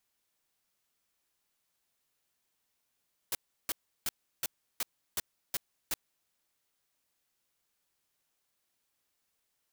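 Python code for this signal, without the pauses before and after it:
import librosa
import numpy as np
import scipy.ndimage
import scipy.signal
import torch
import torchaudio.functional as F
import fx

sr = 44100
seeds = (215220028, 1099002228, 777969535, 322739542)

y = fx.noise_burst(sr, seeds[0], colour='white', on_s=0.03, off_s=0.34, bursts=8, level_db=-32.0)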